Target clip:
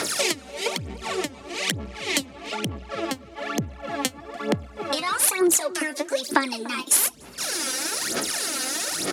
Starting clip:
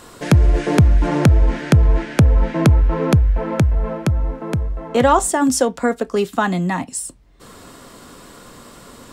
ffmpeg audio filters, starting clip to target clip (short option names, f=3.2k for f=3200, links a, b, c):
-filter_complex "[0:a]equalizer=f=800:t=o:w=2.3:g=-4.5,acontrast=62,alimiter=limit=-11.5dB:level=0:latency=1:release=251,acompressor=threshold=-28dB:ratio=16,crystalizer=i=7.5:c=0,asetrate=57191,aresample=44100,atempo=0.771105,aphaser=in_gain=1:out_gain=1:delay=3.9:decay=0.77:speed=1.1:type=sinusoidal,aeval=exprs='1.41*(cos(1*acos(clip(val(0)/1.41,-1,1)))-cos(1*PI/2))+0.141*(cos(3*acos(clip(val(0)/1.41,-1,1)))-cos(3*PI/2))+0.0282*(cos(6*acos(clip(val(0)/1.41,-1,1)))-cos(6*PI/2))':c=same,highpass=240,lowpass=6.8k,asplit=2[a][b];[b]adelay=293,lowpass=f=1.2k:p=1,volume=-17dB,asplit=2[c][d];[d]adelay=293,lowpass=f=1.2k:p=1,volume=0.51,asplit=2[e][f];[f]adelay=293,lowpass=f=1.2k:p=1,volume=0.51,asplit=2[g][h];[h]adelay=293,lowpass=f=1.2k:p=1,volume=0.51[i];[a][c][e][g][i]amix=inputs=5:normalize=0,volume=3dB"